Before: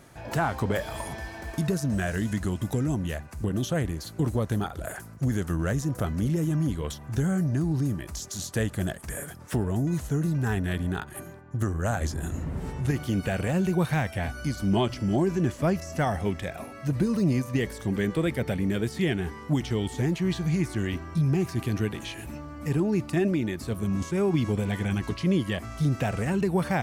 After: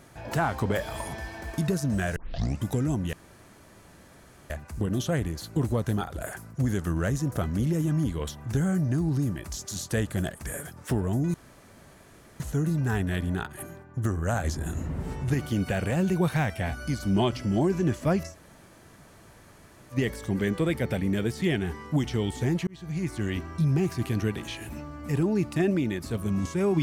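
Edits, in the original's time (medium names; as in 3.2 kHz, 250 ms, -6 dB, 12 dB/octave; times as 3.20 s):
2.16 s: tape start 0.47 s
3.13 s: insert room tone 1.37 s
9.97 s: insert room tone 1.06 s
15.88–17.50 s: room tone, crossfade 0.10 s
20.24–21.06 s: fade in equal-power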